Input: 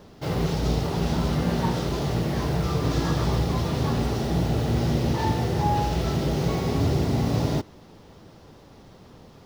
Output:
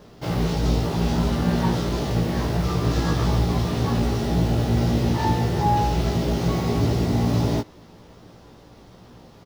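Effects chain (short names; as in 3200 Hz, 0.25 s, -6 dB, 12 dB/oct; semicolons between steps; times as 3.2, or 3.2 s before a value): doubler 17 ms -3.5 dB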